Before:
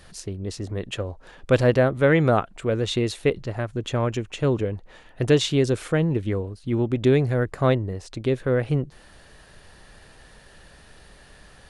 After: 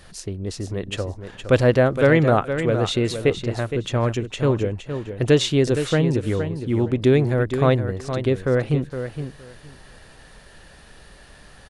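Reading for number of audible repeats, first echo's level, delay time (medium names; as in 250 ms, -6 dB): 2, -9.0 dB, 465 ms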